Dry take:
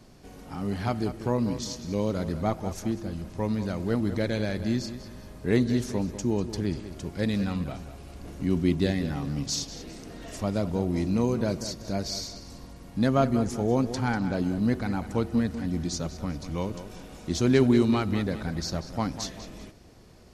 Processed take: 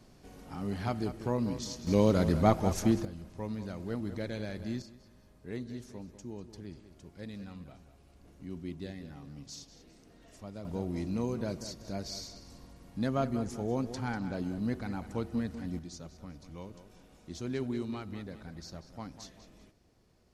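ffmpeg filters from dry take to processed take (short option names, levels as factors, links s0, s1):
-af "asetnsamples=n=441:p=0,asendcmd='1.87 volume volume 3dB;3.05 volume volume -9.5dB;4.82 volume volume -16.5dB;10.65 volume volume -8dB;15.79 volume volume -14.5dB',volume=0.562"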